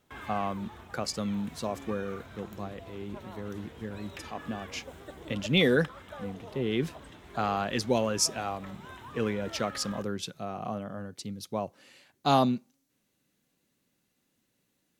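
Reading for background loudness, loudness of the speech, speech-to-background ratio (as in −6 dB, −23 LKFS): −46.5 LKFS, −32.0 LKFS, 14.5 dB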